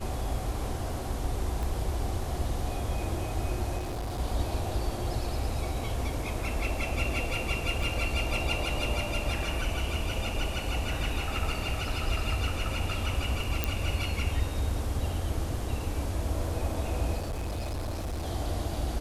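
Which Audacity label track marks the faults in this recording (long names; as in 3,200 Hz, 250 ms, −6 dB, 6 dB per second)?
1.630000	1.630000	click
3.770000	4.200000	clipping −30.5 dBFS
7.830000	7.830000	drop-out 2.9 ms
13.640000	13.640000	click −11 dBFS
17.180000	18.270000	clipping −30 dBFS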